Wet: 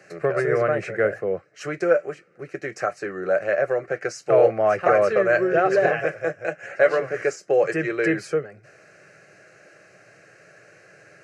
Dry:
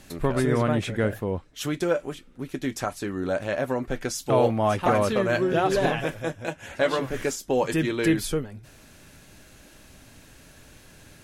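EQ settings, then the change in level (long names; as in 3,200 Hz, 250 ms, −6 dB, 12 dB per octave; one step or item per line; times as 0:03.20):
Gaussian smoothing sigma 1.6 samples
Bessel high-pass filter 220 Hz, order 8
phaser with its sweep stopped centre 940 Hz, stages 6
+7.0 dB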